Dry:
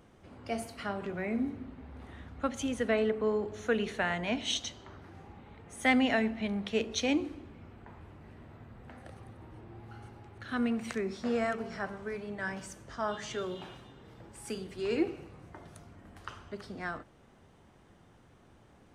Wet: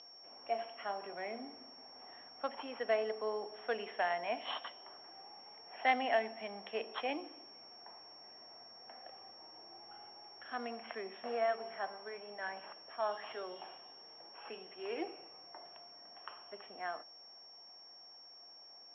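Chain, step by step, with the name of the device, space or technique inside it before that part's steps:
toy sound module (linearly interpolated sample-rate reduction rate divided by 6×; switching amplifier with a slow clock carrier 5,500 Hz; loudspeaker in its box 630–3,500 Hz, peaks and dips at 720 Hz +7 dB, 1,400 Hz −6 dB, 3,100 Hz +8 dB)
level −1.5 dB

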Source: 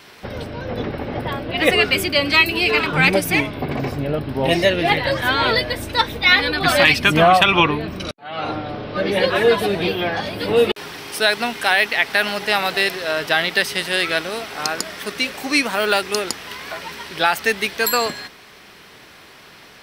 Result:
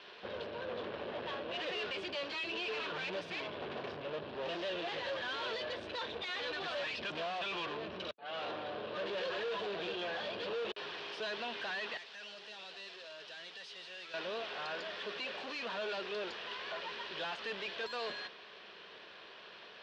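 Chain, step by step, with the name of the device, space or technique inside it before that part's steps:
guitar amplifier (tube saturation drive 32 dB, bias 0.6; bass and treble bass −14 dB, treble +3 dB; loudspeaker in its box 92–3,500 Hz, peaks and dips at 130 Hz −7 dB, 280 Hz −10 dB, 810 Hz −7 dB, 1,300 Hz −6 dB, 2,100 Hz −10 dB)
0:11.97–0:14.14: first-order pre-emphasis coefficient 0.8
level −1 dB

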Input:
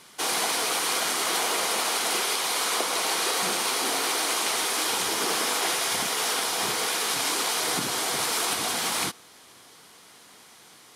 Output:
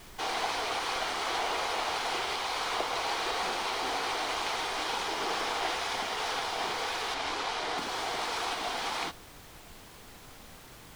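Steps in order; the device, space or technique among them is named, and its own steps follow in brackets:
horn gramophone (band-pass filter 270–4,300 Hz; parametric band 800 Hz +5 dB 0.54 octaves; tape wow and flutter; pink noise bed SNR 17 dB)
0:07.14–0:07.78: high-shelf EQ 10,000 Hz −11.5 dB
level −5 dB

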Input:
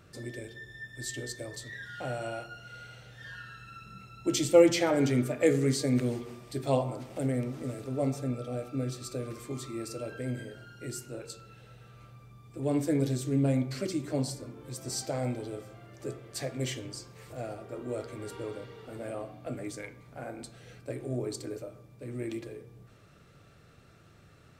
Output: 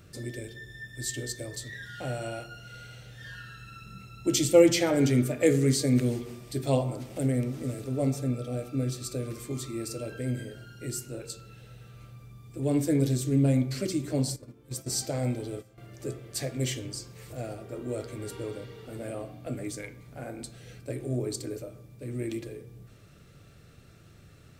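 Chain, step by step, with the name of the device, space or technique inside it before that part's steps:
smiley-face EQ (low-shelf EQ 94 Hz +4.5 dB; parametric band 1,000 Hz −5.5 dB 1.6 octaves; high-shelf EQ 9,300 Hz +6 dB)
0:14.36–0:15.78: noise gate −40 dBFS, range −12 dB
level +3 dB

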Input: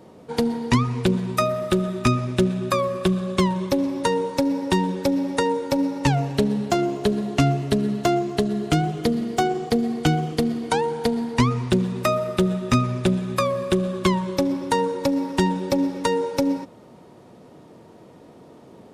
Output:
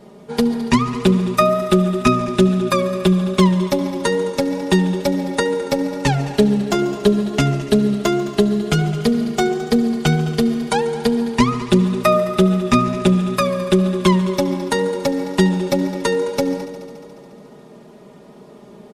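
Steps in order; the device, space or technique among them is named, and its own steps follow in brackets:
comb filter 4.9 ms, depth 95%
multi-head tape echo (echo machine with several playback heads 71 ms, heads all three, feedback 67%, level −20 dB; tape wow and flutter 17 cents)
level +1.5 dB

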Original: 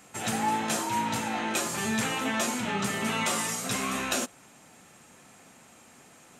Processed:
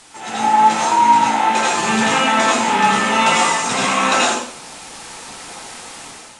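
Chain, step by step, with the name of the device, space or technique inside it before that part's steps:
filmed off a television (band-pass filter 220–6,700 Hz; parametric band 900 Hz +9 dB 0.37 octaves; convolution reverb RT60 0.55 s, pre-delay 77 ms, DRR −4.5 dB; white noise bed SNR 20 dB; automatic gain control gain up to 10.5 dB; AAC 48 kbit/s 22,050 Hz)

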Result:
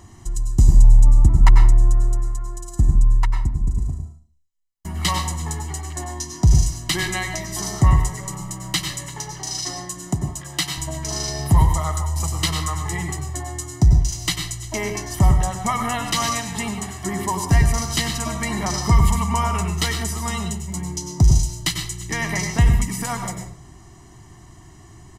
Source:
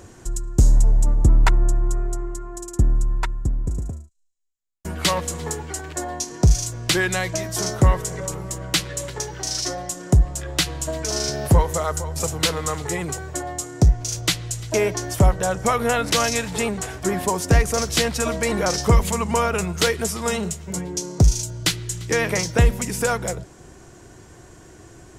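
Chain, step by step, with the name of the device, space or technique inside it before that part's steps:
microphone above a desk (comb filter 1 ms, depth 84%; convolution reverb RT60 0.40 s, pre-delay 89 ms, DRR 4.5 dB)
0:10.12–0:10.78: high-pass filter 170 Hz 12 dB per octave
level −4.5 dB

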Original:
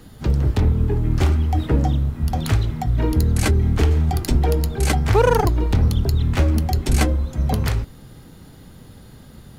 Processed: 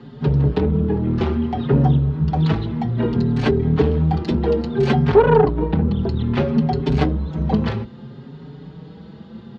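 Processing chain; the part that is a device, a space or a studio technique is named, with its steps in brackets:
0:05.15–0:05.99: high-frequency loss of the air 210 metres
barber-pole flanger into a guitar amplifier (barber-pole flanger 5.2 ms +0.61 Hz; soft clipping −15 dBFS, distortion −16 dB; loudspeaker in its box 85–4,000 Hz, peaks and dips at 96 Hz −10 dB, 150 Hz +10 dB, 220 Hz +8 dB, 420 Hz +9 dB, 910 Hz +4 dB, 2,200 Hz −4 dB)
level +4.5 dB

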